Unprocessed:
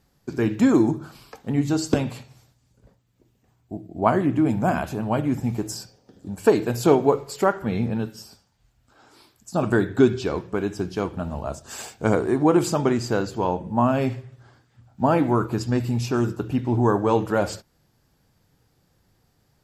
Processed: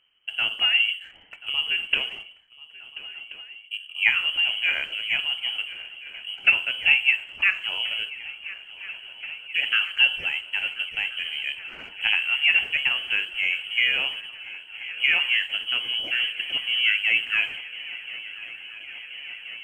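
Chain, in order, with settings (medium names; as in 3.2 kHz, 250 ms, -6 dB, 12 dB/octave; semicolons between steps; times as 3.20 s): dynamic bell 190 Hz, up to -7 dB, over -34 dBFS, Q 1.1; frequency inversion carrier 3.1 kHz; in parallel at -9 dB: crossover distortion -43 dBFS; on the sum: shuffle delay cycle 1379 ms, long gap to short 3:1, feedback 78%, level -18.5 dB; 2.15–4.04 s: three bands expanded up and down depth 40%; trim -3 dB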